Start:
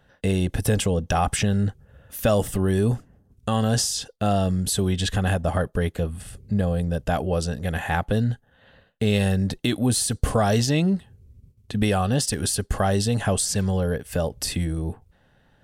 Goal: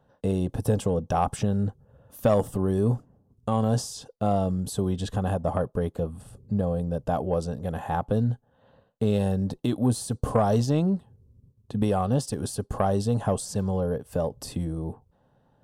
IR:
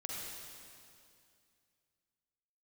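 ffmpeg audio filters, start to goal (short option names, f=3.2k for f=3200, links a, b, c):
-af "equalizer=f=125:t=o:w=1:g=8,equalizer=f=250:t=o:w=1:g=6,equalizer=f=500:t=o:w=1:g=7,equalizer=f=1k:t=o:w=1:g=11,equalizer=f=2k:t=o:w=1:g=-9,aeval=exprs='1.06*(cos(1*acos(clip(val(0)/1.06,-1,1)))-cos(1*PI/2))+0.133*(cos(3*acos(clip(val(0)/1.06,-1,1)))-cos(3*PI/2))+0.0168*(cos(5*acos(clip(val(0)/1.06,-1,1)))-cos(5*PI/2))':c=same,volume=-8dB"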